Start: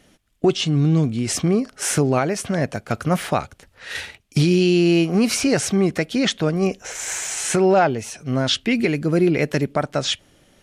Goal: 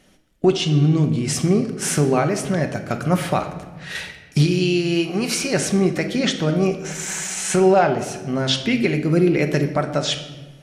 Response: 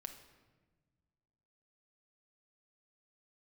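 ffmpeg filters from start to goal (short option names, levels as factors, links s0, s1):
-filter_complex "[0:a]asettb=1/sr,asplit=3[s0][s1][s2];[s0]atrim=end=4.464[s3];[s1]atrim=start=4.46:end=5.54,asetpts=PTS-STARTPTS,afade=t=in:d=0.004:c=qsin,afade=t=out:st=1.076:d=0.004:c=qsin,lowshelf=f=430:g=-8[s4];[s2]atrim=start=5.536[s5];[s3][s4]acrossfade=d=0.004:c1=hsin:c2=qsin[s6];[s6][s5]acrossfade=d=0.004:c1=qsin:c2=hsin[s7];[1:a]atrim=start_sample=2205,asetrate=48510,aresample=44100[s8];[s7][s8]afir=irnorm=-1:irlink=0,volume=1.78"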